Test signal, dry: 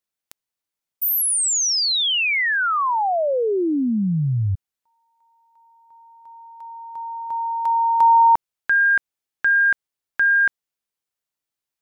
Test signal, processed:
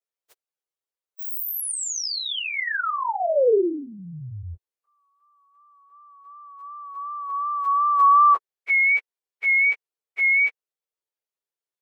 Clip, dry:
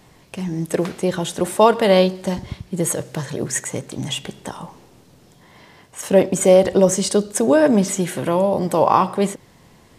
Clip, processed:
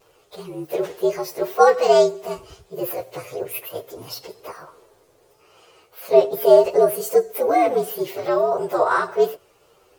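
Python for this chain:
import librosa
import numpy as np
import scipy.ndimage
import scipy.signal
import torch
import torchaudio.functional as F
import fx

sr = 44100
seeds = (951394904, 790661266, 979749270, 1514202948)

y = fx.partial_stretch(x, sr, pct=117)
y = fx.low_shelf_res(y, sr, hz=310.0, db=-10.5, q=3.0)
y = fx.vibrato(y, sr, rate_hz=2.7, depth_cents=43.0)
y = y * 10.0 ** (-1.5 / 20.0)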